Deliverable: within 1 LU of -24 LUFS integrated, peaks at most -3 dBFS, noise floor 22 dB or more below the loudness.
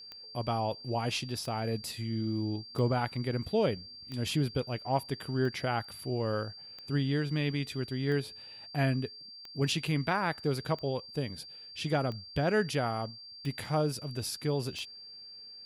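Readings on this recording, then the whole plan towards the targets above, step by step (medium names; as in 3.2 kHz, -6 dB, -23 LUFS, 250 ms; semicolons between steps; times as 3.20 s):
clicks found 12; steady tone 4.7 kHz; tone level -46 dBFS; loudness -33.0 LUFS; peak level -16.5 dBFS; loudness target -24.0 LUFS
-> de-click; band-stop 4.7 kHz, Q 30; trim +9 dB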